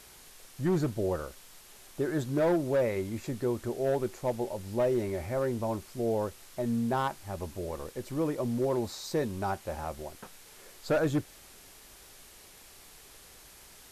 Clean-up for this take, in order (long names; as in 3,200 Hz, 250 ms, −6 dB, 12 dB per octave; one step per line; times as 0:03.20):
clipped peaks rebuilt −21.5 dBFS
broadband denoise 23 dB, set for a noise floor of −53 dBFS